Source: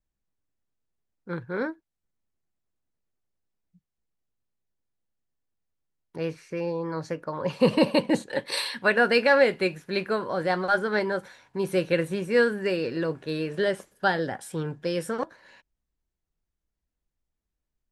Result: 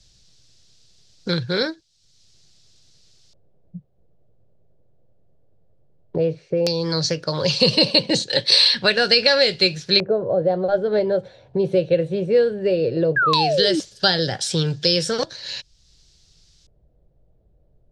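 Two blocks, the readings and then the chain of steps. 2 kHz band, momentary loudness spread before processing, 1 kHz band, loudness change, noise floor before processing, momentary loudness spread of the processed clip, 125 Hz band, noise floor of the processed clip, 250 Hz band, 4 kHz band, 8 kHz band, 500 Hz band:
+2.5 dB, 13 LU, +3.5 dB, +7.5 dB, -85 dBFS, 11 LU, +8.5 dB, -60 dBFS, +3.5 dB, +17.5 dB, +12.0 dB, +5.5 dB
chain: graphic EQ 125/250/1000/2000/4000/8000 Hz +7/-10/-11/-5/+9/+6 dB; LFO low-pass square 0.15 Hz 600–5300 Hz; painted sound fall, 13.16–13.80 s, 290–1700 Hz -28 dBFS; loudness maximiser +7 dB; three bands compressed up and down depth 70%

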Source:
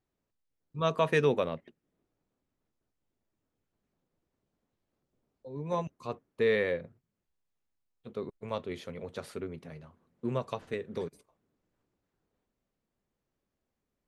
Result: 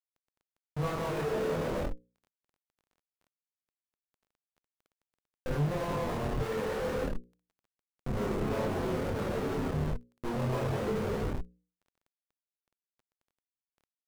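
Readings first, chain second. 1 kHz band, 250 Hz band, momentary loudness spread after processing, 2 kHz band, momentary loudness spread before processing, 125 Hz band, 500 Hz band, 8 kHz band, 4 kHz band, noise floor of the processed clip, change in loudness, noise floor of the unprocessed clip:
+1.5 dB, +4.0 dB, 8 LU, -3.0 dB, 17 LU, +6.0 dB, -1.0 dB, no reading, -1.0 dB, under -85 dBFS, 0.0 dB, -85 dBFS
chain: low-pass 4.8 kHz; in parallel at -1 dB: compression 12:1, threshold -35 dBFS, peak gain reduction 15 dB; on the sum: gated-style reverb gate 450 ms falling, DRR -7 dB; peak limiter -17.5 dBFS, peak gain reduction 10.5 dB; Schmitt trigger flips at -32 dBFS; hum notches 60/120/180/240/300/360/420/480/540 Hz; chorus voices 4, 0.16 Hz, delay 25 ms, depth 4.8 ms; crackle 12 per s -51 dBFS; treble shelf 2 kHz -11.5 dB; trim +3.5 dB

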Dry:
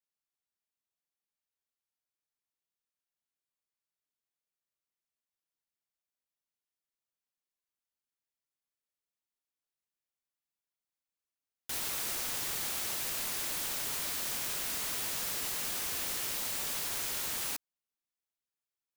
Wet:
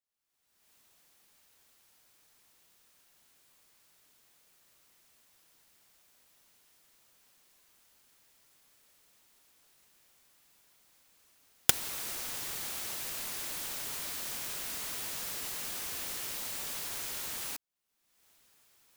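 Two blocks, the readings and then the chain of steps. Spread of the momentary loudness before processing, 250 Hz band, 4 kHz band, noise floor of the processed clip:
1 LU, -1.5 dB, -1.5 dB, -76 dBFS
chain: recorder AGC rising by 42 dB/s; trim -3 dB

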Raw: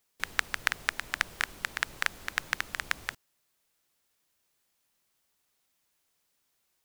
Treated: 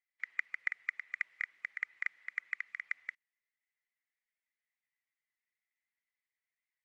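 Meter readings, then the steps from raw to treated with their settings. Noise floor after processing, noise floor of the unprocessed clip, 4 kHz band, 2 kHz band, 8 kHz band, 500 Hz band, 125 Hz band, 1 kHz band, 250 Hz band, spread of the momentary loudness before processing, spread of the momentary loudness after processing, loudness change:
under -85 dBFS, -76 dBFS, -25.0 dB, -6.0 dB, under -25 dB, under -30 dB, under -40 dB, -18.5 dB, under -35 dB, 5 LU, 4 LU, -6.5 dB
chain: coarse spectral quantiser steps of 15 dB; band-pass filter 2 kHz, Q 12; trim +1 dB

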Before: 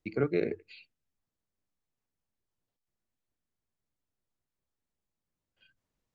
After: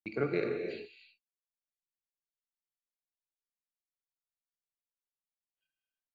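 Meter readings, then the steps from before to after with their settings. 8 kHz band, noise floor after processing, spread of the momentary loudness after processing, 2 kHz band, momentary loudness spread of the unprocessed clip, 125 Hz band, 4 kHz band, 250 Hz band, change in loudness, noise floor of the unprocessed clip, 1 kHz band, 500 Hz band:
no reading, under -85 dBFS, 15 LU, +1.5 dB, 10 LU, -4.0 dB, +1.5 dB, -3.0 dB, -3.0 dB, under -85 dBFS, +1.0 dB, -1.5 dB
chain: gate -55 dBFS, range -24 dB; bass shelf 330 Hz -8 dB; gated-style reverb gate 350 ms flat, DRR 3 dB

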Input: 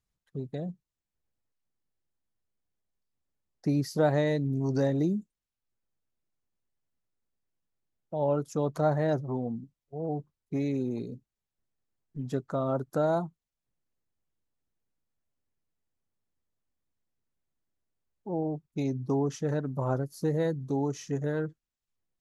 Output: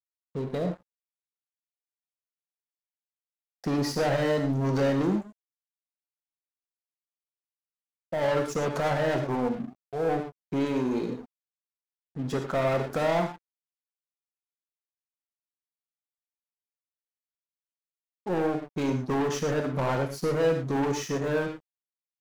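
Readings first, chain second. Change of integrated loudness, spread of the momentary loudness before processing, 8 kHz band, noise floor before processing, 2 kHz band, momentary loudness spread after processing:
+2.5 dB, 12 LU, no reading, under -85 dBFS, +8.5 dB, 10 LU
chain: overdrive pedal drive 29 dB, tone 3 kHz, clips at -12.5 dBFS; gated-style reverb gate 140 ms flat, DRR 4.5 dB; crossover distortion -38 dBFS; trim -6 dB

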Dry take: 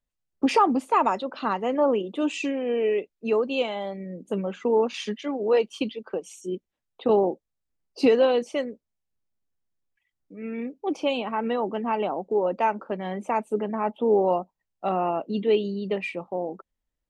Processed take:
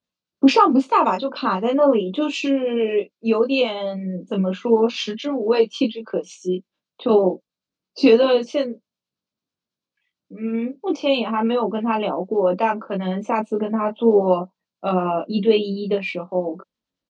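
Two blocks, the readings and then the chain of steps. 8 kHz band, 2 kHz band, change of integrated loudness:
no reading, +5.0 dB, +5.5 dB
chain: harmonic tremolo 9.1 Hz, depth 50%, crossover 780 Hz; cabinet simulation 160–6000 Hz, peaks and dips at 190 Hz +3 dB, 410 Hz -3 dB, 780 Hz -7 dB, 1.9 kHz -8 dB, 4.1 kHz +4 dB; doubling 22 ms -3.5 dB; trim +8 dB

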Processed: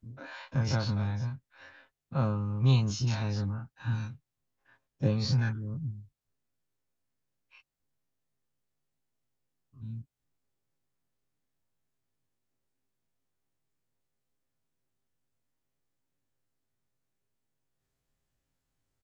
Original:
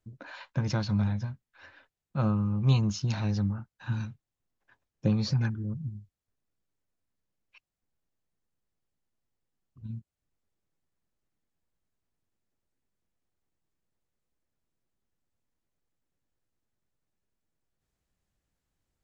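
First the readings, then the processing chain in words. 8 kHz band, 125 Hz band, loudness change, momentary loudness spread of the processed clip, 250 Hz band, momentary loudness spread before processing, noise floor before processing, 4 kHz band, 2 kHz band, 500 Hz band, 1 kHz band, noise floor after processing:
no reading, -0.5 dB, -1.0 dB, 18 LU, -4.0 dB, 17 LU, under -85 dBFS, +1.5 dB, +1.0 dB, +1.0 dB, 0.0 dB, -85 dBFS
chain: every event in the spectrogram widened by 60 ms; comb 7.5 ms, depth 40%; trim -4.5 dB

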